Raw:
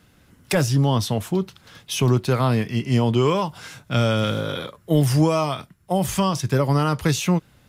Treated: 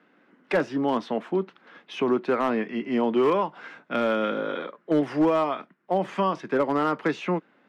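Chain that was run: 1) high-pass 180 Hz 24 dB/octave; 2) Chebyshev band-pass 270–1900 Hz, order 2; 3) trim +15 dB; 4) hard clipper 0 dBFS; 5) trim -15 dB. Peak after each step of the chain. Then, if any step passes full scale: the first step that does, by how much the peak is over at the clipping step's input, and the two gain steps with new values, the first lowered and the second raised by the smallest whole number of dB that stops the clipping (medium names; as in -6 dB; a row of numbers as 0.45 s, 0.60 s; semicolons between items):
-8.5 dBFS, -10.0 dBFS, +5.0 dBFS, 0.0 dBFS, -15.0 dBFS; step 3, 5.0 dB; step 3 +10 dB, step 5 -10 dB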